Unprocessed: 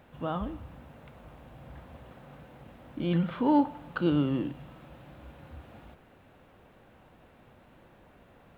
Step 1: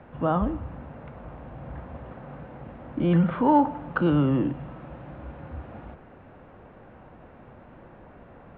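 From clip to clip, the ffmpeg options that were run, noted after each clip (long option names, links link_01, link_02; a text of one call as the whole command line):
ffmpeg -i in.wav -filter_complex "[0:a]lowpass=1700,acrossover=split=160|540[link_01][link_02][link_03];[link_02]alimiter=level_in=5.5dB:limit=-24dB:level=0:latency=1,volume=-5.5dB[link_04];[link_01][link_04][link_03]amix=inputs=3:normalize=0,volume=9dB" out.wav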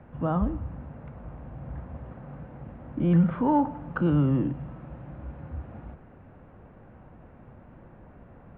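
ffmpeg -i in.wav -af "bass=frequency=250:gain=7,treble=frequency=4000:gain=-12,volume=-5dB" out.wav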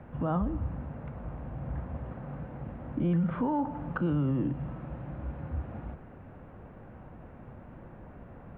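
ffmpeg -i in.wav -af "alimiter=limit=-23dB:level=0:latency=1:release=205,volume=2dB" out.wav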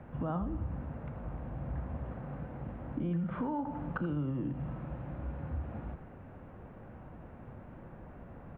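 ffmpeg -i in.wav -af "acompressor=threshold=-30dB:ratio=4,aecho=1:1:81:0.237,volume=-1.5dB" out.wav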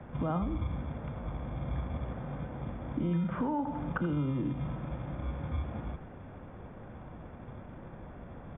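ffmpeg -i in.wav -filter_complex "[0:a]acrossover=split=130|1100[link_01][link_02][link_03];[link_01]acrusher=samples=39:mix=1:aa=0.000001[link_04];[link_04][link_02][link_03]amix=inputs=3:normalize=0,aresample=8000,aresample=44100,volume=3dB" out.wav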